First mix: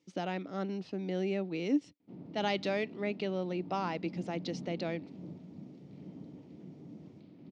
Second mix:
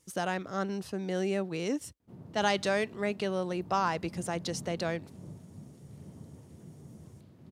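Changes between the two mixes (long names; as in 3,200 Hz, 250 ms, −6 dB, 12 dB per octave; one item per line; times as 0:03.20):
speech +4.0 dB
master: remove loudspeaker in its box 180–4,900 Hz, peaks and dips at 180 Hz +5 dB, 290 Hz +10 dB, 1,100 Hz −6 dB, 1,600 Hz −7 dB, 2,300 Hz +4 dB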